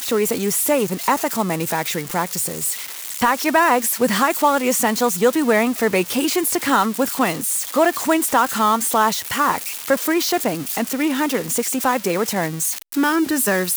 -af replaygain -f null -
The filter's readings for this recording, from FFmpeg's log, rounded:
track_gain = +0.2 dB
track_peak = 0.428